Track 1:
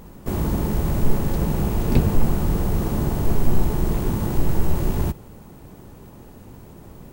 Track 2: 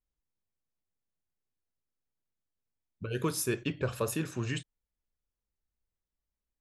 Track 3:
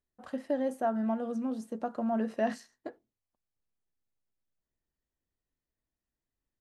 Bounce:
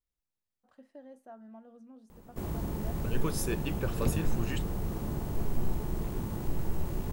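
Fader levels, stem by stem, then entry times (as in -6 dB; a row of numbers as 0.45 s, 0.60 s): -12.0 dB, -3.0 dB, -19.5 dB; 2.10 s, 0.00 s, 0.45 s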